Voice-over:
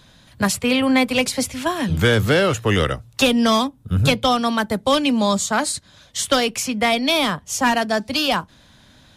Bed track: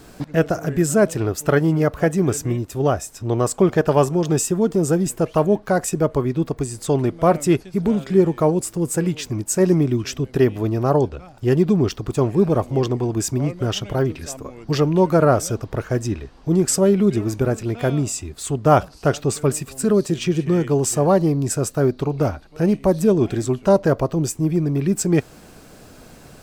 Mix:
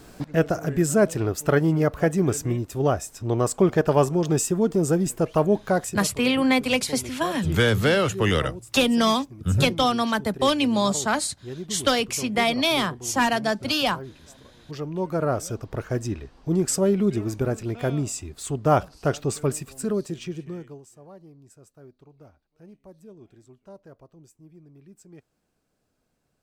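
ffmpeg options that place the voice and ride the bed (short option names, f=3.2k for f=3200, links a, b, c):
-filter_complex "[0:a]adelay=5550,volume=-3.5dB[a];[1:a]volume=10.5dB,afade=t=out:st=5.74:d=0.3:silence=0.16788,afade=t=in:st=14.6:d=1.26:silence=0.211349,afade=t=out:st=19.43:d=1.41:silence=0.0530884[b];[a][b]amix=inputs=2:normalize=0"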